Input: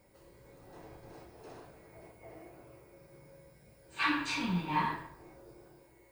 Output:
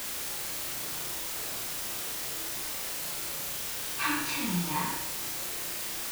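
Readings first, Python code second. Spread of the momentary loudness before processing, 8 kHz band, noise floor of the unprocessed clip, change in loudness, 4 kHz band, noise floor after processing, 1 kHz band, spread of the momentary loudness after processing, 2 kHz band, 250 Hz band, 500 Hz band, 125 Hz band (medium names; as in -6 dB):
21 LU, +22.0 dB, -63 dBFS, +1.5 dB, +9.5 dB, -36 dBFS, 0.0 dB, 3 LU, +3.0 dB, +1.0 dB, +5.0 dB, +2.0 dB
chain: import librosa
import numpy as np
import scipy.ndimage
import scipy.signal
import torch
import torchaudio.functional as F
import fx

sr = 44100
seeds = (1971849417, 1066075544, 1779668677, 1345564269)

y = fx.quant_dither(x, sr, seeds[0], bits=6, dither='triangular')
y = fx.room_flutter(y, sr, wall_m=5.9, rt60_s=0.4)
y = y * librosa.db_to_amplitude(-1.0)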